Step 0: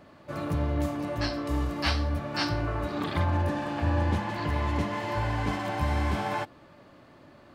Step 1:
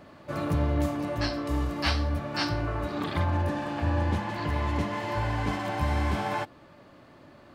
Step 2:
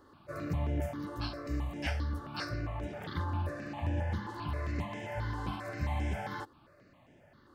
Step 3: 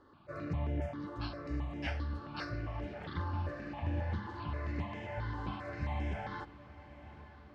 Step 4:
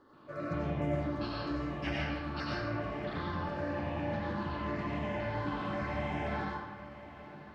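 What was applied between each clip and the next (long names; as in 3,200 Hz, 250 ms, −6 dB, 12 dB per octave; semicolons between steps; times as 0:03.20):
speech leveller within 4 dB 2 s
step-sequenced phaser 7.5 Hz 650–4,300 Hz; level −5.5 dB
low-pass filter 4,100 Hz 12 dB per octave; feedback delay with all-pass diffusion 951 ms, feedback 54%, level −15 dB; level −2.5 dB
low shelf with overshoot 120 Hz −6 dB, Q 1.5; comb and all-pass reverb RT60 1.3 s, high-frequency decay 0.65×, pre-delay 55 ms, DRR −4.5 dB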